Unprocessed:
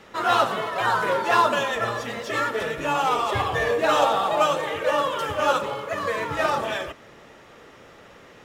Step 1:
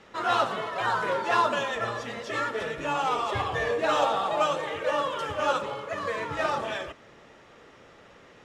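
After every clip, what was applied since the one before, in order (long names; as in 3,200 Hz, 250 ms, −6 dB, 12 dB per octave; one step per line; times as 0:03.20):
low-pass filter 8,400 Hz 12 dB per octave
level −4.5 dB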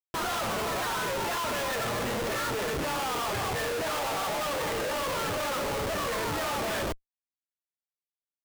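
comparator with hysteresis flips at −38.5 dBFS
level −1.5 dB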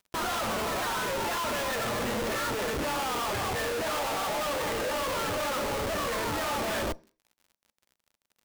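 surface crackle 66 per second −48 dBFS
on a send at −19.5 dB: convolution reverb RT60 0.35 s, pre-delay 3 ms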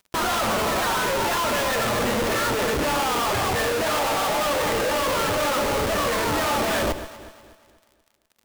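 delay that swaps between a low-pass and a high-pass 121 ms, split 1,100 Hz, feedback 64%, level −11 dB
level +7 dB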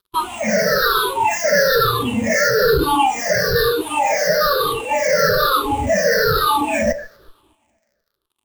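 rippled gain that drifts along the octave scale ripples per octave 0.61, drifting −1.1 Hz, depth 17 dB
noise reduction from a noise print of the clip's start 16 dB
level +4.5 dB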